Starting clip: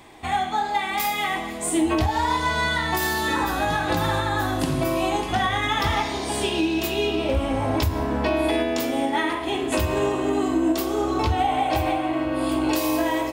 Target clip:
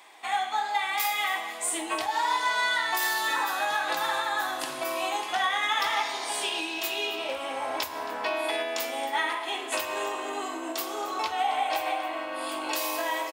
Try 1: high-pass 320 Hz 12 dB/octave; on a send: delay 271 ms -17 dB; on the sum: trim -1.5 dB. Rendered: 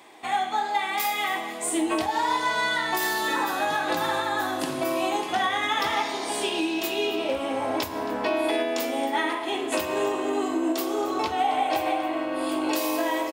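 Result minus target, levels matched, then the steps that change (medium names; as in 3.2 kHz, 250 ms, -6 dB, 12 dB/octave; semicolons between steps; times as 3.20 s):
250 Hz band +10.5 dB
change: high-pass 780 Hz 12 dB/octave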